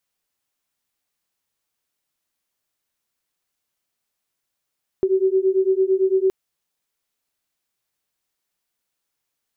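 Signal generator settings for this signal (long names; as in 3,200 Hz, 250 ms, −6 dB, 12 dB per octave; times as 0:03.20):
two tones that beat 376 Hz, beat 8.9 Hz, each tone −18.5 dBFS 1.27 s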